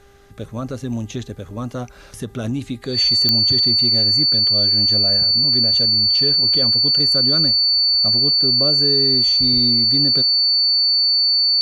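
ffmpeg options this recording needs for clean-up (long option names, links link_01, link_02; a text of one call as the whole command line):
ffmpeg -i in.wav -af "adeclick=threshold=4,bandreject=frequency=399.7:width_type=h:width=4,bandreject=frequency=799.4:width_type=h:width=4,bandreject=frequency=1199.1:width_type=h:width=4,bandreject=frequency=1598.8:width_type=h:width=4,bandreject=frequency=1998.5:width_type=h:width=4,bandreject=frequency=4500:width=30" out.wav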